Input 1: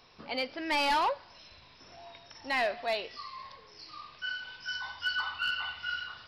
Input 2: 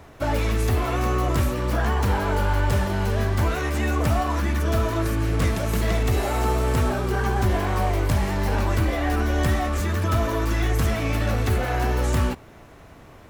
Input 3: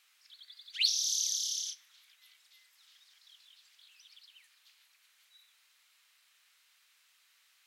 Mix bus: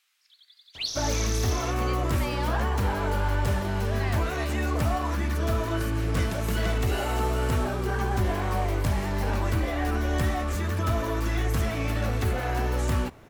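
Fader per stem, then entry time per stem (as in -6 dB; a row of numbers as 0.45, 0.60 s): -7.5, -4.0, -3.0 dB; 1.50, 0.75, 0.00 s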